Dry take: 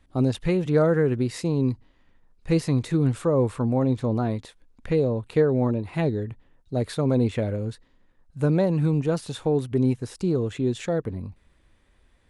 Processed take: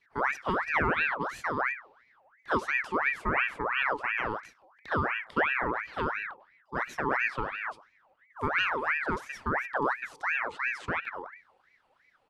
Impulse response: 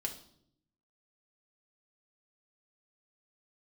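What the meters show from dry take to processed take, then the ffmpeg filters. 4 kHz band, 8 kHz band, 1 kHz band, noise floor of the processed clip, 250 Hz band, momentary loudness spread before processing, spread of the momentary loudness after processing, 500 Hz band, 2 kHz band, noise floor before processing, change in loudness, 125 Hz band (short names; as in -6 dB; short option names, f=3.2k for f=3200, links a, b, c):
-1.0 dB, under -10 dB, +6.5 dB, -68 dBFS, -15.5 dB, 8 LU, 9 LU, -11.5 dB, +13.0 dB, -62 dBFS, -5.5 dB, -19.0 dB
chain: -filter_complex "[0:a]lowpass=f=3.6k:p=1,bandreject=f=50:t=h:w=6,bandreject=f=100:t=h:w=6,bandreject=f=150:t=h:w=6,bandreject=f=200:t=h:w=6,bandreject=f=250:t=h:w=6,afreqshift=98,asplit=2[a][b];[b]adelay=100,highpass=300,lowpass=3.4k,asoftclip=type=hard:threshold=-17dB,volume=-21dB[c];[a][c]amix=inputs=2:normalize=0,asplit=2[d][e];[1:a]atrim=start_sample=2205[f];[e][f]afir=irnorm=-1:irlink=0,volume=-17dB[g];[d][g]amix=inputs=2:normalize=0,aeval=exprs='val(0)*sin(2*PI*1400*n/s+1400*0.55/2.9*sin(2*PI*2.9*n/s))':c=same,volume=-5dB"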